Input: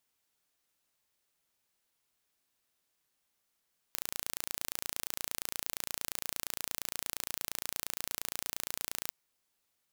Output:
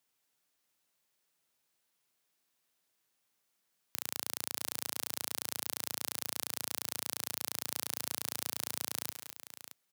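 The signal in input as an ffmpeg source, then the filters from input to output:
-f lavfi -i "aevalsrc='0.398*eq(mod(n,1542),0)':d=5.16:s=44100"
-filter_complex "[0:a]highpass=f=99:w=0.5412,highpass=f=99:w=1.3066,asplit=2[s0][s1];[s1]aecho=0:1:210|623:0.282|0.266[s2];[s0][s2]amix=inputs=2:normalize=0"

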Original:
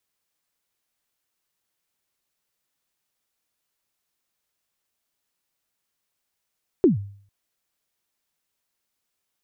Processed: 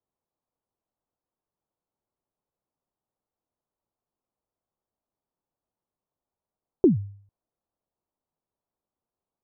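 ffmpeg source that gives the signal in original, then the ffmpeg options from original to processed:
-f lavfi -i "aevalsrc='0.335*pow(10,-3*t/0.53)*sin(2*PI*(410*0.134/log(100/410)*(exp(log(100/410)*min(t,0.134)/0.134)-1)+100*max(t-0.134,0)))':d=0.45:s=44100"
-af "lowpass=f=1000:w=0.5412,lowpass=f=1000:w=1.3066"

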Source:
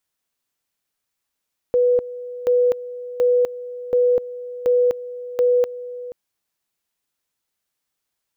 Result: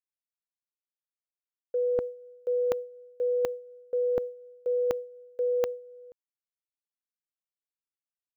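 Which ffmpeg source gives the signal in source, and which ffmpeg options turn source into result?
-f lavfi -i "aevalsrc='pow(10,(-13-16*gte(mod(t,0.73),0.25))/20)*sin(2*PI*492*t)':d=4.38:s=44100"
-af "agate=range=0.0224:threshold=0.0794:ratio=3:detection=peak,areverse,acompressor=threshold=0.0501:ratio=6,areverse"

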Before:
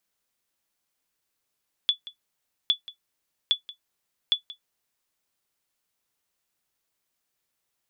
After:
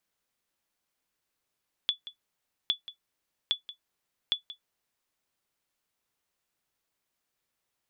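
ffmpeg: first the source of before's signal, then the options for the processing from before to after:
-f lavfi -i "aevalsrc='0.251*(sin(2*PI*3440*mod(t,0.81))*exp(-6.91*mod(t,0.81)/0.11)+0.119*sin(2*PI*3440*max(mod(t,0.81)-0.18,0))*exp(-6.91*max(mod(t,0.81)-0.18,0)/0.11))':d=3.24:s=44100"
-af "highshelf=f=4200:g=-5,acompressor=threshold=0.0562:ratio=6"

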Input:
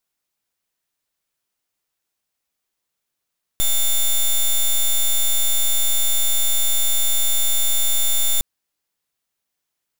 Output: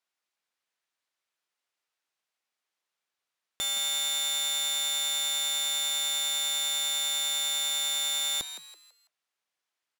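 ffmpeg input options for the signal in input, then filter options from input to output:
-f lavfi -i "aevalsrc='0.15*(2*lt(mod(3560*t,1),0.09)-1)':d=4.81:s=44100"
-filter_complex "[0:a]highpass=f=880:p=1,aemphasis=mode=reproduction:type=50fm,asplit=2[s0][s1];[s1]asplit=4[s2][s3][s4][s5];[s2]adelay=165,afreqshift=150,volume=0.282[s6];[s3]adelay=330,afreqshift=300,volume=0.101[s7];[s4]adelay=495,afreqshift=450,volume=0.0367[s8];[s5]adelay=660,afreqshift=600,volume=0.0132[s9];[s6][s7][s8][s9]amix=inputs=4:normalize=0[s10];[s0][s10]amix=inputs=2:normalize=0"

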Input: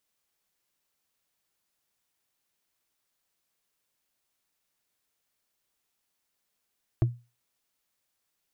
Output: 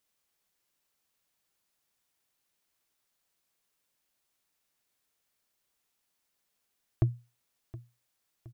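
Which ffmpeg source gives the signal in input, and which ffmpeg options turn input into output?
-f lavfi -i "aevalsrc='0.158*pow(10,-3*t/0.29)*sin(2*PI*120*t)+0.0708*pow(10,-3*t/0.086)*sin(2*PI*330.8*t)+0.0316*pow(10,-3*t/0.038)*sin(2*PI*648.5*t)+0.0141*pow(10,-3*t/0.021)*sin(2*PI*1072*t)+0.00631*pow(10,-3*t/0.013)*sin(2*PI*1600.8*t)':d=0.45:s=44100"
-af "aecho=1:1:719|1438|2157|2876:0.126|0.0642|0.0327|0.0167"

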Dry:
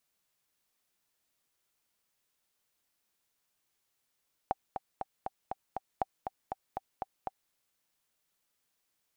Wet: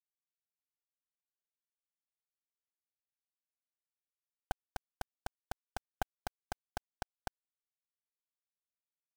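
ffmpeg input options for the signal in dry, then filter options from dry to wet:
-f lavfi -i "aevalsrc='pow(10,(-15.5-6.5*gte(mod(t,6*60/239),60/239))/20)*sin(2*PI*772*mod(t,60/239))*exp(-6.91*mod(t,60/239)/0.03)':d=3.01:s=44100"
-af "acrusher=bits=3:dc=4:mix=0:aa=0.000001"

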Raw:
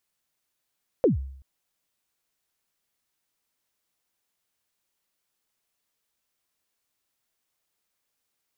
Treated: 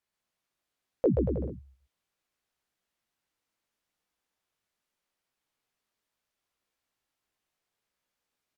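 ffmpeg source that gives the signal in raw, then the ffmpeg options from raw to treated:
-f lavfi -i "aevalsrc='0.211*pow(10,-3*t/0.66)*sin(2*PI*(570*0.134/log(67/570)*(exp(log(67/570)*min(t,0.134)/0.134)-1)+67*max(t-0.134,0)))':d=0.38:s=44100"
-af "aemphasis=mode=reproduction:type=cd,flanger=delay=15.5:depth=3.7:speed=0.75,aecho=1:1:130|234|317.2|383.8|437:0.631|0.398|0.251|0.158|0.1"

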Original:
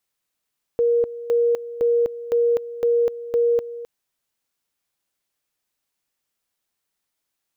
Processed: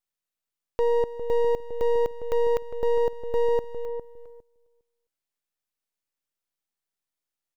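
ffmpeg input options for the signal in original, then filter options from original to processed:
-f lavfi -i "aevalsrc='pow(10,(-15-15*gte(mod(t,0.51),0.25))/20)*sin(2*PI*472*t)':d=3.06:s=44100"
-filter_complex "[0:a]aeval=exprs='if(lt(val(0),0),0.251*val(0),val(0))':c=same,asplit=2[s0][s1];[s1]adelay=406,lowpass=f=830:p=1,volume=0.398,asplit=2[s2][s3];[s3]adelay=406,lowpass=f=830:p=1,volume=0.21,asplit=2[s4][s5];[s5]adelay=406,lowpass=f=830:p=1,volume=0.21[s6];[s0][s2][s4][s6]amix=inputs=4:normalize=0,agate=range=0.447:threshold=0.00631:ratio=16:detection=peak"

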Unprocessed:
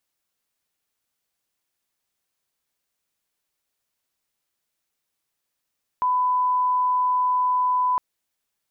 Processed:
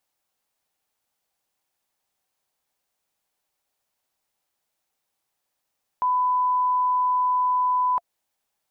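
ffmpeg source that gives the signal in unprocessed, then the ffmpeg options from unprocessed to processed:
-f lavfi -i "sine=f=1000:d=1.96:r=44100,volume=0.06dB"
-af "equalizer=f=740:w=2:g=10,bandreject=f=690:w=12,alimiter=limit=0.119:level=0:latency=1:release=89"

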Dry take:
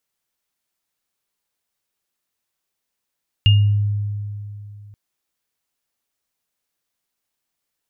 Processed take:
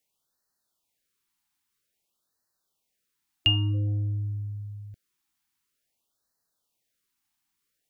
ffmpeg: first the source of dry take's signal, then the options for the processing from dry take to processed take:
-f lavfi -i "aevalsrc='0.376*pow(10,-3*t/2.86)*sin(2*PI*103*t)+0.211*pow(10,-3*t/0.37)*sin(2*PI*2830*t)':d=1.48:s=44100"
-filter_complex "[0:a]acrossover=split=350|510[s0][s1][s2];[s0]asoftclip=type=tanh:threshold=0.0596[s3];[s3][s1][s2]amix=inputs=3:normalize=0,afftfilt=real='re*(1-between(b*sr/1024,480*pow(2800/480,0.5+0.5*sin(2*PI*0.51*pts/sr))/1.41,480*pow(2800/480,0.5+0.5*sin(2*PI*0.51*pts/sr))*1.41))':imag='im*(1-between(b*sr/1024,480*pow(2800/480,0.5+0.5*sin(2*PI*0.51*pts/sr))/1.41,480*pow(2800/480,0.5+0.5*sin(2*PI*0.51*pts/sr))*1.41))':win_size=1024:overlap=0.75"

